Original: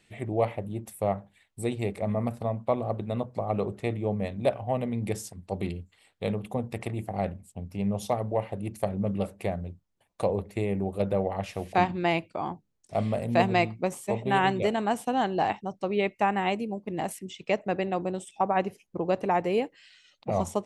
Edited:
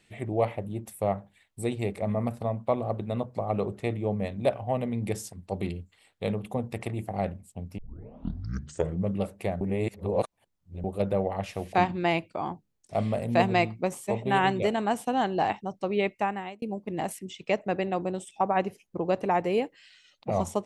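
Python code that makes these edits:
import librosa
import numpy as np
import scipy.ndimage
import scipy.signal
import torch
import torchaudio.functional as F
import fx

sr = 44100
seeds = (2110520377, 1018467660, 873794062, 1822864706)

y = fx.edit(x, sr, fx.tape_start(start_s=7.78, length_s=1.32),
    fx.reverse_span(start_s=9.61, length_s=1.23),
    fx.fade_out_span(start_s=16.09, length_s=0.53), tone=tone)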